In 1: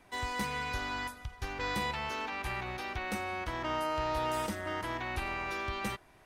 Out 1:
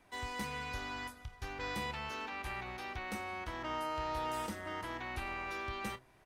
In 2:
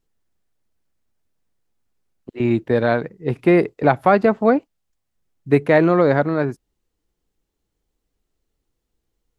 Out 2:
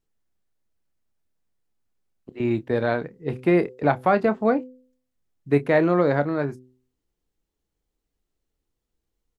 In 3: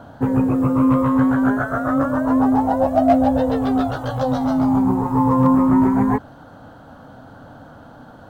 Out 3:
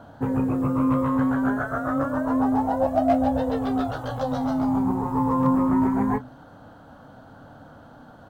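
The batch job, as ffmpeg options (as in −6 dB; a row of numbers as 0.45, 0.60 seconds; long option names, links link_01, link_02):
-filter_complex "[0:a]asplit=2[link_01][link_02];[link_02]adelay=28,volume=-13dB[link_03];[link_01][link_03]amix=inputs=2:normalize=0,bandreject=frequency=127.3:width_type=h:width=4,bandreject=frequency=254.6:width_type=h:width=4,bandreject=frequency=381.9:width_type=h:width=4,bandreject=frequency=509.2:width_type=h:width=4,volume=-5dB"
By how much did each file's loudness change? −5.0, −4.5, −6.0 LU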